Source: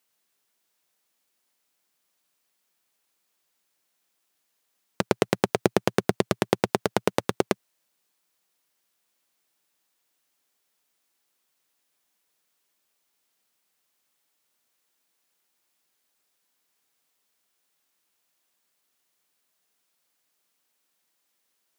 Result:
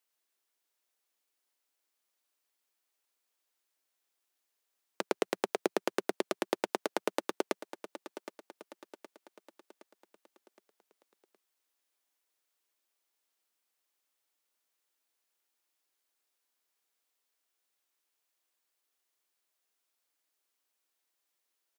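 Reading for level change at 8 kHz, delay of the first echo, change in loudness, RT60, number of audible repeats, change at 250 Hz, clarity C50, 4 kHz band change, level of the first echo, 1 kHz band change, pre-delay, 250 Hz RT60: -7.5 dB, 0.767 s, -9.5 dB, none, 4, -10.5 dB, none, -8.0 dB, -13.0 dB, -8.0 dB, none, none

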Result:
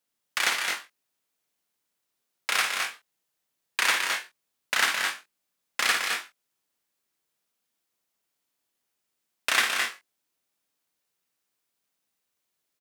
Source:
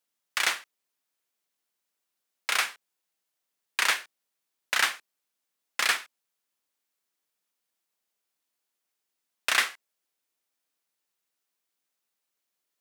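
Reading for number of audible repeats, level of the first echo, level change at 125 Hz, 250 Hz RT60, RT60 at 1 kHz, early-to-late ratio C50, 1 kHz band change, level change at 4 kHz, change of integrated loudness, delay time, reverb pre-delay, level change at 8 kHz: 3, -6.5 dB, n/a, none, none, none, +2.5 dB, +2.5 dB, +1.0 dB, 54 ms, none, +2.5 dB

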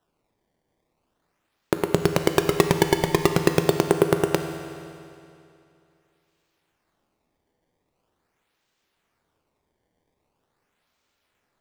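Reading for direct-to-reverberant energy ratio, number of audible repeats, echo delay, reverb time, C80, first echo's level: 6.0 dB, none, none, 2.6 s, 8.0 dB, none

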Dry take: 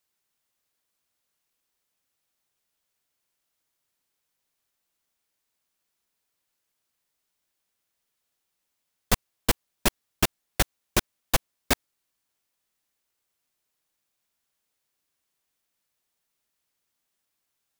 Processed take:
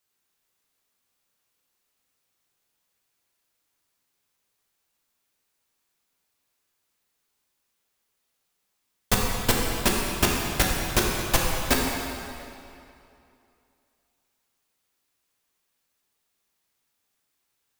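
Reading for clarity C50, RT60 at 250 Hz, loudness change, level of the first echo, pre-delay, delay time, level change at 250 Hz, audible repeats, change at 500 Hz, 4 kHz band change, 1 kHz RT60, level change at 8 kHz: 0.0 dB, 2.5 s, +3.5 dB, none, 5 ms, none, +5.0 dB, none, +4.5 dB, +3.5 dB, 2.7 s, +3.5 dB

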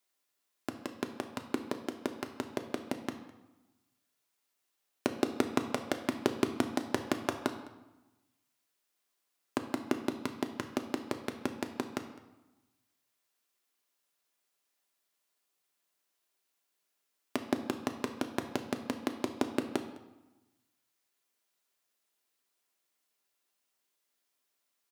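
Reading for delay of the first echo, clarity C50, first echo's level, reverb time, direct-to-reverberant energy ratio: 0.207 s, 9.5 dB, -21.0 dB, 1.0 s, 5.0 dB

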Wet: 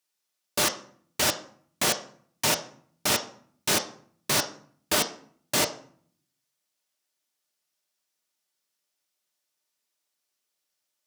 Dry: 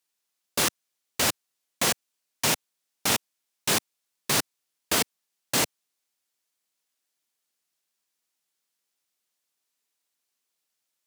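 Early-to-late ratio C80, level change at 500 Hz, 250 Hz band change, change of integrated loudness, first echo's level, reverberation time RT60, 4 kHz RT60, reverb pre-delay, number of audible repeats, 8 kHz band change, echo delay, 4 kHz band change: 16.5 dB, +2.0 dB, -0.5 dB, 0.0 dB, none, 0.55 s, 0.35 s, 3 ms, none, -0.5 dB, none, +0.5 dB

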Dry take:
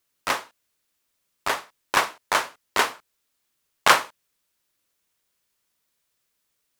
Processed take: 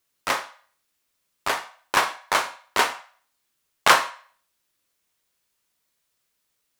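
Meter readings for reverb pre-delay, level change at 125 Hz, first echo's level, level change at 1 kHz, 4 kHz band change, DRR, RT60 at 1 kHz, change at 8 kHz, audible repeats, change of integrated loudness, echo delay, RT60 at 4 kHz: 7 ms, 0.0 dB, none, +1.0 dB, +0.5 dB, 9.5 dB, 0.45 s, +0.5 dB, none, +0.5 dB, none, 0.45 s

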